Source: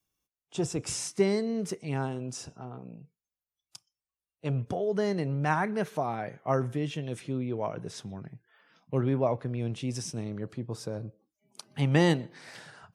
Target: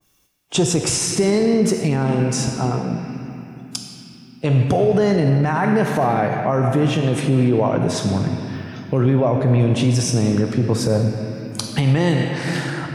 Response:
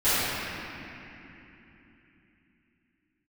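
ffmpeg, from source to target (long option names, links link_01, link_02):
-filter_complex "[0:a]acompressor=threshold=-31dB:ratio=4,asplit=2[link_01][link_02];[1:a]atrim=start_sample=2205,highshelf=frequency=2000:gain=9.5[link_03];[link_02][link_03]afir=irnorm=-1:irlink=0,volume=-25dB[link_04];[link_01][link_04]amix=inputs=2:normalize=0,alimiter=level_in=26.5dB:limit=-1dB:release=50:level=0:latency=1,adynamicequalizer=threshold=0.0398:dfrequency=1800:dqfactor=0.7:tfrequency=1800:tqfactor=0.7:attack=5:release=100:ratio=0.375:range=2.5:mode=cutabove:tftype=highshelf,volume=-7dB"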